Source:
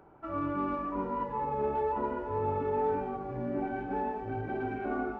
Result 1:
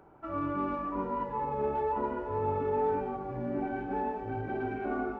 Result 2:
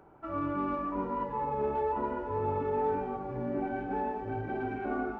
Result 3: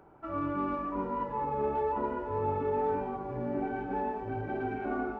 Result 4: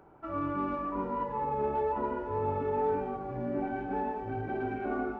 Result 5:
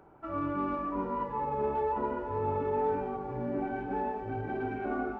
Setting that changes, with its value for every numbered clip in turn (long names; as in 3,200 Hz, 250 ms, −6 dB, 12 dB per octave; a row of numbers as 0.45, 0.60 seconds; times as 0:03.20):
feedback echo with a band-pass in the loop, delay time: 134, 264, 1,019, 85, 502 milliseconds